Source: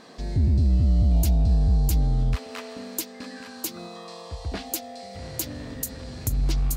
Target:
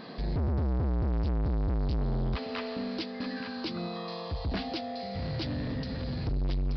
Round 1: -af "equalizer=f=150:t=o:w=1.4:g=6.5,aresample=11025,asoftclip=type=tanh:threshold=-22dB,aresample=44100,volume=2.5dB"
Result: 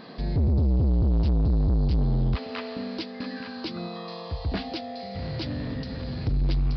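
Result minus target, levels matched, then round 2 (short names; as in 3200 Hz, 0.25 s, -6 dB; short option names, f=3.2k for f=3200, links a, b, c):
soft clip: distortion -5 dB
-af "equalizer=f=150:t=o:w=1.4:g=6.5,aresample=11025,asoftclip=type=tanh:threshold=-29.5dB,aresample=44100,volume=2.5dB"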